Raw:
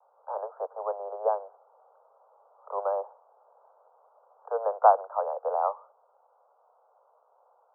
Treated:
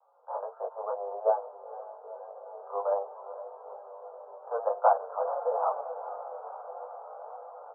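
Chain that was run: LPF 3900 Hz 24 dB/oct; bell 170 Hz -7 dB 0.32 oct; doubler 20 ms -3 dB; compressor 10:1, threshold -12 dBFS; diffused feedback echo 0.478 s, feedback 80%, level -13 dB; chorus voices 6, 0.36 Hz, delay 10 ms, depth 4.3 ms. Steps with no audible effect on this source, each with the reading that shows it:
LPF 3900 Hz: input band ends at 1500 Hz; bell 170 Hz: input band starts at 380 Hz

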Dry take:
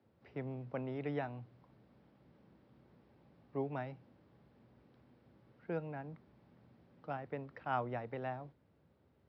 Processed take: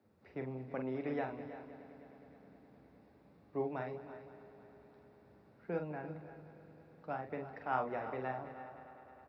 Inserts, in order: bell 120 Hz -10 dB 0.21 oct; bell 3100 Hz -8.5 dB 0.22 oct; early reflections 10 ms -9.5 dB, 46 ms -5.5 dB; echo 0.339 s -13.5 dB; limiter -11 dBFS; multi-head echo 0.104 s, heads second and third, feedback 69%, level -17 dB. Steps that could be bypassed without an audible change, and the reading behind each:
limiter -11 dBFS: input peak -20.0 dBFS

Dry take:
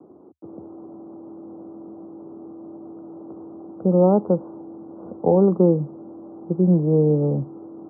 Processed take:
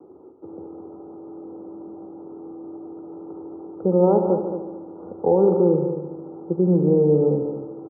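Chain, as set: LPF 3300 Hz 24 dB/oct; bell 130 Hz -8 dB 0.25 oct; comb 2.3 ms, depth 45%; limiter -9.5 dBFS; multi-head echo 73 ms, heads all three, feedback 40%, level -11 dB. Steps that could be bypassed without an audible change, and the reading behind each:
LPF 3300 Hz: input band ends at 960 Hz

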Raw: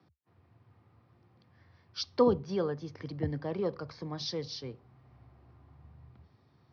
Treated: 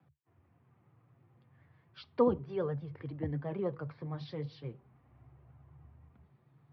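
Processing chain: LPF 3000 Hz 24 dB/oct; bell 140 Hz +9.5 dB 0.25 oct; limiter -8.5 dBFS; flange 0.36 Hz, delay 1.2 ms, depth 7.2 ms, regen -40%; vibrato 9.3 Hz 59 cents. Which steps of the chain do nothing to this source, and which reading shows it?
limiter -8.5 dBFS: input peak -13.0 dBFS

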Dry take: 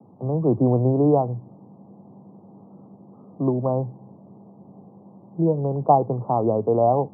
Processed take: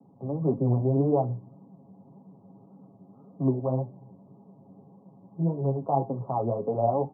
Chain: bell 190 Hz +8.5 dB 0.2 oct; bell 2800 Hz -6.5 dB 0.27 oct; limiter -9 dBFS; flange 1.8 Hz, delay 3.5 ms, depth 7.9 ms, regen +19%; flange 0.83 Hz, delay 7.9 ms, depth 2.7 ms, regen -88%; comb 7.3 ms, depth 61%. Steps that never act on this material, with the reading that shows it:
bell 2800 Hz: input band ends at 1100 Hz

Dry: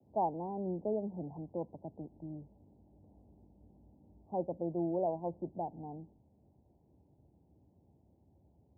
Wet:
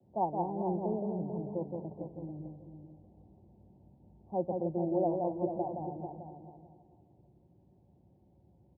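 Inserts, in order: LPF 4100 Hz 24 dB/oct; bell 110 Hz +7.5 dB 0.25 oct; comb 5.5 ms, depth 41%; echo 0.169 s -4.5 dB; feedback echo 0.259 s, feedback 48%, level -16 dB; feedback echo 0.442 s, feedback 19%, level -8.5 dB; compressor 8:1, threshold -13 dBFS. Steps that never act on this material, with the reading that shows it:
LPF 4100 Hz: input band ends at 1000 Hz; compressor, threshold -13 dBFS: input peak -19.0 dBFS

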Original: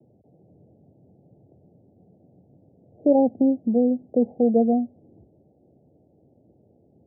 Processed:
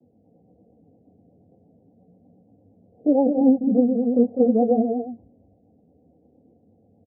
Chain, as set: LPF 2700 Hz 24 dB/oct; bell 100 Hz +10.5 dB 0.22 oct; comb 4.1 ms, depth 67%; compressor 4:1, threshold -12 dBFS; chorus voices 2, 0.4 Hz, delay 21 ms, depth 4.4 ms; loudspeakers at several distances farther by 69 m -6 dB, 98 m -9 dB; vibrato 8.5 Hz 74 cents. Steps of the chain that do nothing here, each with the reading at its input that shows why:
LPF 2700 Hz: input band ends at 850 Hz

